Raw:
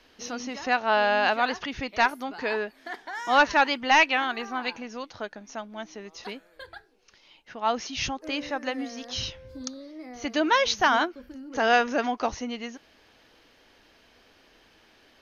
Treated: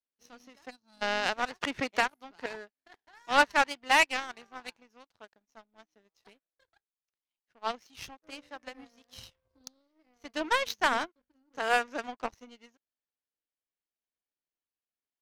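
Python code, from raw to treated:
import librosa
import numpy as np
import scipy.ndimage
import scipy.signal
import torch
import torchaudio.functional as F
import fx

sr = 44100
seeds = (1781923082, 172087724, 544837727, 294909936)

y = fx.spec_box(x, sr, start_s=0.7, length_s=0.32, low_hz=340.0, high_hz=3900.0, gain_db=-21)
y = fx.power_curve(y, sr, exponent=2.0)
y = fx.band_squash(y, sr, depth_pct=100, at=(1.61, 2.46))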